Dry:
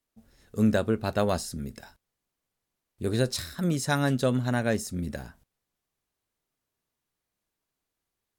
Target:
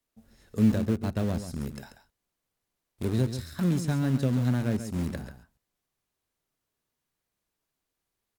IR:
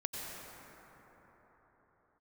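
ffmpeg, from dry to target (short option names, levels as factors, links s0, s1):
-filter_complex "[0:a]acrossover=split=320[s0][s1];[s1]acompressor=threshold=0.01:ratio=6[s2];[s0][s2]amix=inputs=2:normalize=0,asplit=2[s3][s4];[s4]acrusher=bits=4:mix=0:aa=0.000001,volume=0.282[s5];[s3][s5]amix=inputs=2:normalize=0,aecho=1:1:137:0.316"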